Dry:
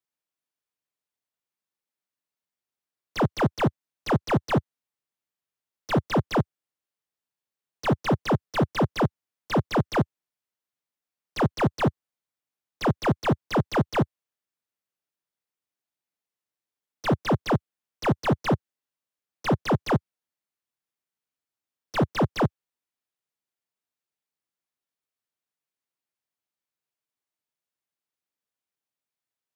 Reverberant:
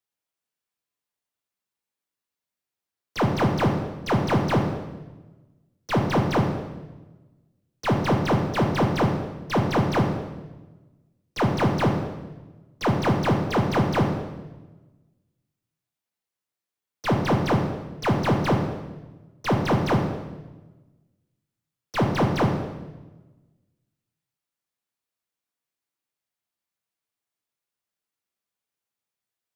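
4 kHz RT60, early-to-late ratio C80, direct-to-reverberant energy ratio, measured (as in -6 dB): 1.0 s, 7.0 dB, 1.5 dB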